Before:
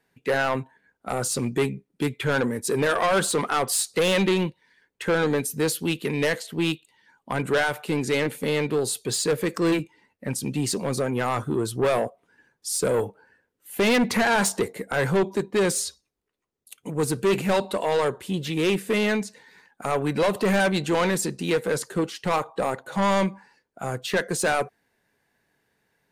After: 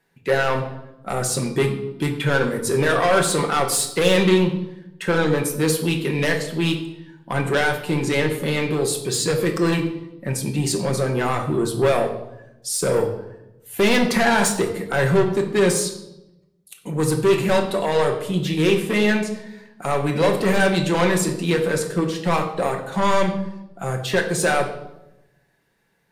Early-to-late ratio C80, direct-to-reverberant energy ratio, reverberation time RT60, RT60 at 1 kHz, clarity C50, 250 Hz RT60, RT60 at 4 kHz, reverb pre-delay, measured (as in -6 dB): 11.5 dB, 2.5 dB, 0.95 s, 0.80 s, 9.0 dB, 1.2 s, 0.70 s, 5 ms